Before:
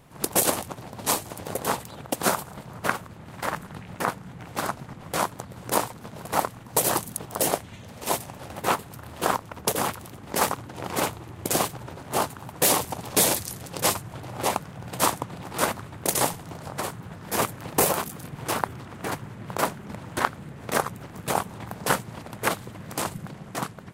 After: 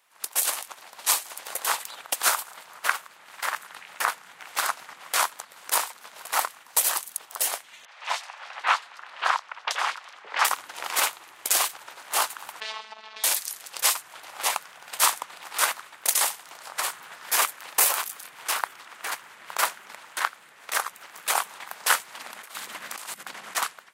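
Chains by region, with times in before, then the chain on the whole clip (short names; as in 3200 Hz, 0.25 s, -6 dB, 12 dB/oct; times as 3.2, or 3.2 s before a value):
7.85–10.45 LPF 9500 Hz + three-band isolator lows -12 dB, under 510 Hz, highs -23 dB, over 5000 Hz + three bands offset in time mids, highs, lows 30/570 ms, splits 430/3600 Hz
12.6–13.24 LPF 4200 Hz 24 dB/oct + compressor 16:1, threshold -30 dBFS + robotiser 218 Hz
22.15–23.56 bell 230 Hz +7 dB 0.81 oct + negative-ratio compressor -38 dBFS
whole clip: HPF 1300 Hz 12 dB/oct; AGC gain up to 13.5 dB; gain -4 dB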